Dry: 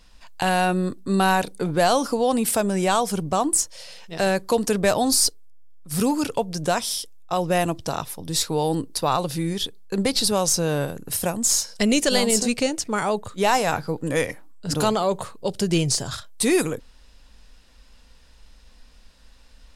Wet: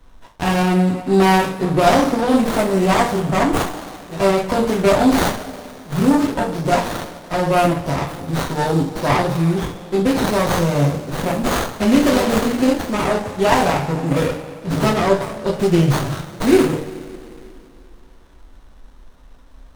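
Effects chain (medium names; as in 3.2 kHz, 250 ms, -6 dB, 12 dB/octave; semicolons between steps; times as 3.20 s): two-slope reverb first 0.42 s, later 2.9 s, from -19 dB, DRR -6 dB; sliding maximum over 17 samples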